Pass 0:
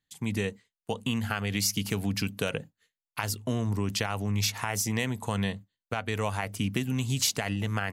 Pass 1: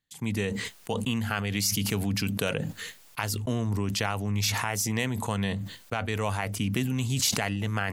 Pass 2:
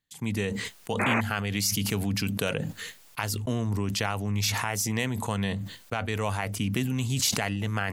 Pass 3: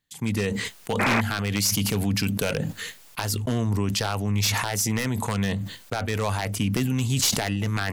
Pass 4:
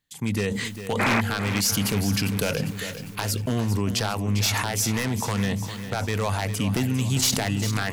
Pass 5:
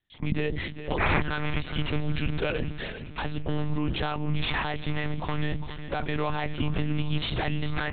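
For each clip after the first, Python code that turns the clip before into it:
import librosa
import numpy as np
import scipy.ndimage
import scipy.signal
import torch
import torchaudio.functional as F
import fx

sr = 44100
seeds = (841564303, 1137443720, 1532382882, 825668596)

y1 = fx.sustainer(x, sr, db_per_s=31.0)
y2 = fx.spec_paint(y1, sr, seeds[0], shape='noise', start_s=0.99, length_s=0.22, low_hz=200.0, high_hz=2600.0, level_db=-26.0)
y3 = np.minimum(y2, 2.0 * 10.0 ** (-20.0 / 20.0) - y2)
y3 = y3 * librosa.db_to_amplitude(4.0)
y4 = fx.echo_feedback(y3, sr, ms=401, feedback_pct=51, wet_db=-11.0)
y5 = fx.lpc_monotone(y4, sr, seeds[1], pitch_hz=150.0, order=10)
y5 = y5 * librosa.db_to_amplitude(-2.0)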